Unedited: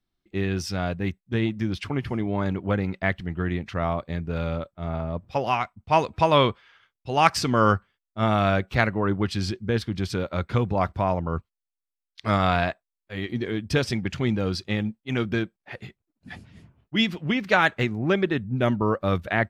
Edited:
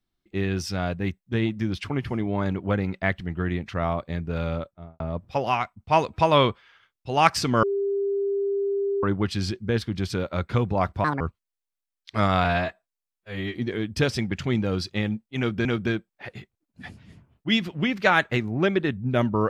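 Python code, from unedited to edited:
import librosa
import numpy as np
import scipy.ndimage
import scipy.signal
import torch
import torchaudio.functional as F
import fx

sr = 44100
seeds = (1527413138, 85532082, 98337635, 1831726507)

y = fx.studio_fade_out(x, sr, start_s=4.59, length_s=0.41)
y = fx.edit(y, sr, fx.bleep(start_s=7.63, length_s=1.4, hz=398.0, db=-22.0),
    fx.speed_span(start_s=11.04, length_s=0.27, speed=1.63),
    fx.stretch_span(start_s=12.55, length_s=0.73, factor=1.5),
    fx.repeat(start_s=15.12, length_s=0.27, count=2), tone=tone)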